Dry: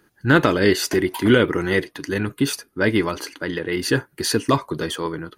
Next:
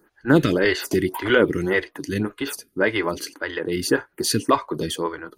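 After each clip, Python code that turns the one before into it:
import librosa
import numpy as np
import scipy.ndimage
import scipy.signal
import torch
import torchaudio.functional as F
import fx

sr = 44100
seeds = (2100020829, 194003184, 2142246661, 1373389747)

y = fx.stagger_phaser(x, sr, hz=1.8)
y = y * 10.0 ** (2.0 / 20.0)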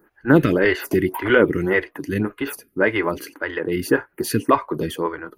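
y = fx.band_shelf(x, sr, hz=5500.0, db=-10.5, octaves=1.7)
y = y * 10.0 ** (2.0 / 20.0)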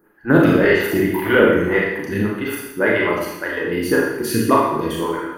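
y = fx.rev_schroeder(x, sr, rt60_s=0.9, comb_ms=27, drr_db=-3.0)
y = y * 10.0 ** (-1.5 / 20.0)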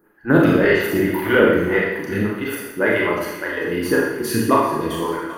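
y = fx.echo_thinned(x, sr, ms=392, feedback_pct=66, hz=420.0, wet_db=-16.5)
y = y * 10.0 ** (-1.0 / 20.0)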